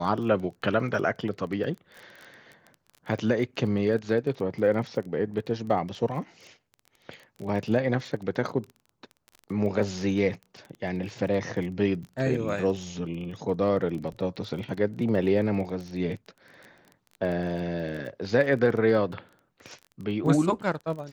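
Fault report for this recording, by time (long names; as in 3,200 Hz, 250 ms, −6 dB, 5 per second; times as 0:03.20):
surface crackle 20 per second −35 dBFS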